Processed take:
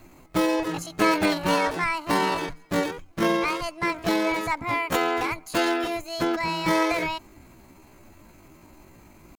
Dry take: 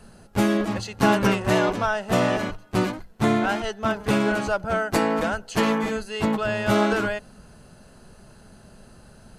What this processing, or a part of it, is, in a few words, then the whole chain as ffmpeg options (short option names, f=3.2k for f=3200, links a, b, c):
chipmunk voice: -af "asetrate=68011,aresample=44100,atempo=0.64842,volume=-2dB"